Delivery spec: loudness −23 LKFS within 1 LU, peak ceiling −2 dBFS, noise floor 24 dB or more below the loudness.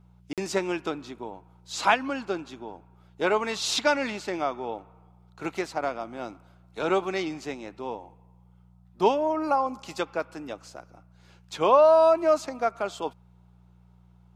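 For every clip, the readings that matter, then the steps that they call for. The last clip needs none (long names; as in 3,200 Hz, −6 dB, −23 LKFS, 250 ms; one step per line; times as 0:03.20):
number of dropouts 1; longest dropout 47 ms; mains hum 60 Hz; hum harmonics up to 180 Hz; level of the hum −53 dBFS; integrated loudness −26.5 LKFS; sample peak −6.5 dBFS; target loudness −23.0 LKFS
→ repair the gap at 0:00.33, 47 ms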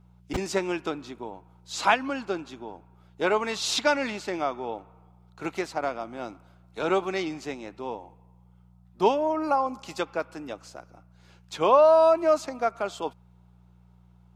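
number of dropouts 0; mains hum 60 Hz; hum harmonics up to 180 Hz; level of the hum −53 dBFS
→ hum removal 60 Hz, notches 3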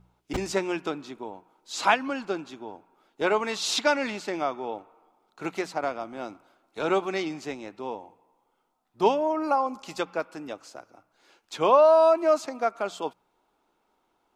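mains hum none found; integrated loudness −26.5 LKFS; sample peak −6.5 dBFS; target loudness −23.0 LKFS
→ level +3.5 dB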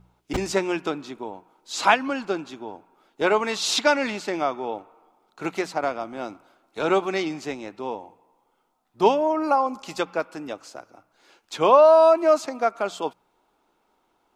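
integrated loudness −23.0 LKFS; sample peak −3.0 dBFS; background noise floor −69 dBFS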